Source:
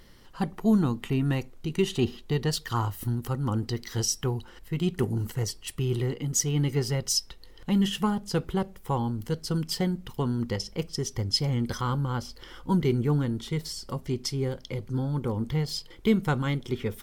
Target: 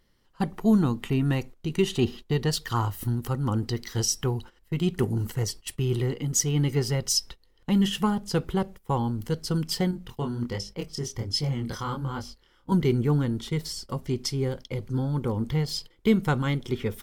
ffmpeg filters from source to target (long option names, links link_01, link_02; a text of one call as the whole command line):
ffmpeg -i in.wav -filter_complex "[0:a]agate=range=-15dB:threshold=-40dB:ratio=16:detection=peak,asettb=1/sr,asplit=3[link_01][link_02][link_03];[link_01]atrim=end=9.914[link_04];[link_02]atrim=start=9.91:end=12.72,asetpts=PTS-STARTPTS,afade=type=in:duration=0.004:curve=qsin,afade=type=out:start_time=2.806:duration=0.004:curve=qsin,flanger=delay=20:depth=7.6:speed=1.3[link_05];[link_03]atrim=start=12.716[link_06];[link_04][link_05]acrossfade=duration=0.004:curve1=hsin:curve2=qsin[link_07];[link_07][link_06]acrossfade=duration=0.004:curve1=qsin:curve2=hsin,volume=1.5dB" out.wav